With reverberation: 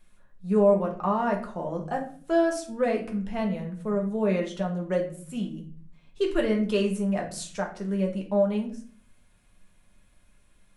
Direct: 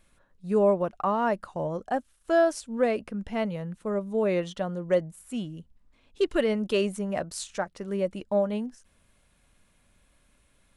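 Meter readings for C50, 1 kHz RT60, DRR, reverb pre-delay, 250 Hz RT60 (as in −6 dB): 9.5 dB, 0.45 s, 0.0 dB, 5 ms, 0.80 s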